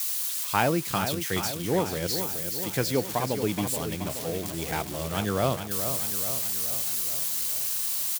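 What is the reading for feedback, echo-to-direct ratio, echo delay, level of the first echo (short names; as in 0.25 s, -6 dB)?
59%, -6.5 dB, 0.426 s, -8.5 dB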